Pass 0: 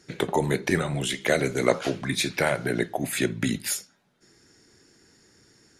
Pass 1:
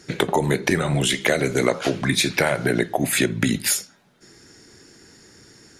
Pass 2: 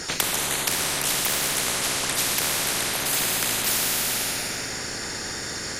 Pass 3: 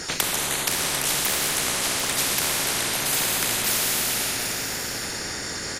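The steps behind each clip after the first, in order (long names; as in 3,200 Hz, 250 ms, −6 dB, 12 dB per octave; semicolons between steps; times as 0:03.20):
downward compressor 5 to 1, threshold −25 dBFS, peak gain reduction 10.5 dB; level +9 dB
convolution reverb RT60 2.3 s, pre-delay 26 ms, DRR −1.5 dB; every bin compressed towards the loudest bin 10 to 1; level +1.5 dB
single-tap delay 746 ms −9 dB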